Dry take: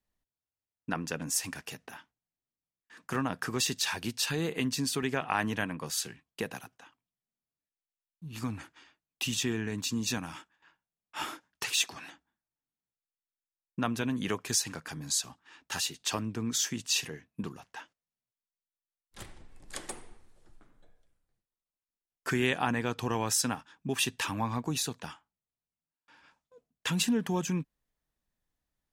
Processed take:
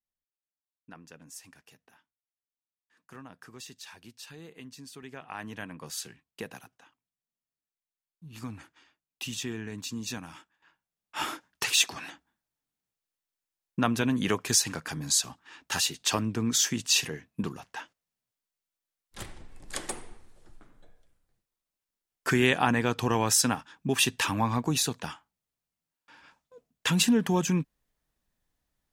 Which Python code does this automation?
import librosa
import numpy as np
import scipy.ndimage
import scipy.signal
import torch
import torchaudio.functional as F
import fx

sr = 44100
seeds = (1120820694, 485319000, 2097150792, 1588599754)

y = fx.gain(x, sr, db=fx.line((4.89, -15.5), (5.9, -4.0), (10.37, -4.0), (11.32, 5.0)))